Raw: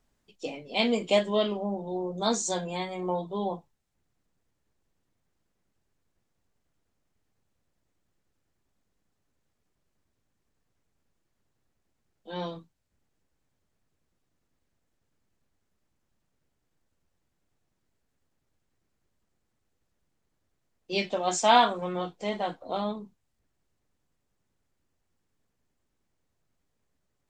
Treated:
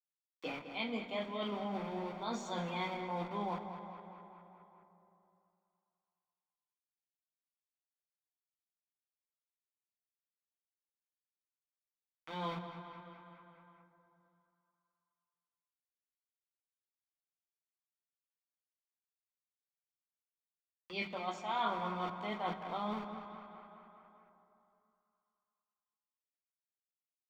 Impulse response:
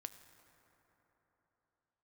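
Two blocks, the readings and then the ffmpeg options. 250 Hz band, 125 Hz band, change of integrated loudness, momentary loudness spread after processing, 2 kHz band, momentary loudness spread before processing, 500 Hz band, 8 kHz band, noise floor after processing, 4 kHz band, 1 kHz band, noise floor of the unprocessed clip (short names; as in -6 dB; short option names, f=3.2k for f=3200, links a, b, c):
-9.0 dB, -6.5 dB, -11.5 dB, 17 LU, -8.5 dB, 17 LU, -13.0 dB, under -20 dB, under -85 dBFS, -12.5 dB, -9.5 dB, -78 dBFS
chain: -filter_complex "[0:a]aeval=exprs='val(0)*gte(abs(val(0)),0.01)':c=same,areverse,acompressor=threshold=-33dB:ratio=16,areverse,equalizer=f=330:t=o:w=0.8:g=-5.5,aecho=1:1:0.9:0.46,asplit=2[a][b];[b]adelay=208,lowpass=f=2.9k:p=1,volume=-9.5dB,asplit=2[c][d];[d]adelay=208,lowpass=f=2.9k:p=1,volume=0.54,asplit=2[e][f];[f]adelay=208,lowpass=f=2.9k:p=1,volume=0.54,asplit=2[g][h];[h]adelay=208,lowpass=f=2.9k:p=1,volume=0.54,asplit=2[i][j];[j]adelay=208,lowpass=f=2.9k:p=1,volume=0.54,asplit=2[k][l];[l]adelay=208,lowpass=f=2.9k:p=1,volume=0.54[m];[a][c][e][g][i][k][m]amix=inputs=7:normalize=0,acrossover=split=670|1100[n][o][p];[p]acompressor=mode=upward:threshold=-49dB:ratio=2.5[q];[n][o][q]amix=inputs=3:normalize=0,acrossover=split=170 3800:gain=0.251 1 0.0631[r][s][t];[r][s][t]amix=inputs=3:normalize=0,bandreject=f=49.13:t=h:w=4,bandreject=f=98.26:t=h:w=4,bandreject=f=147.39:t=h:w=4,bandreject=f=196.52:t=h:w=4,bandreject=f=245.65:t=h:w=4[u];[1:a]atrim=start_sample=2205[v];[u][v]afir=irnorm=-1:irlink=0,volume=6.5dB"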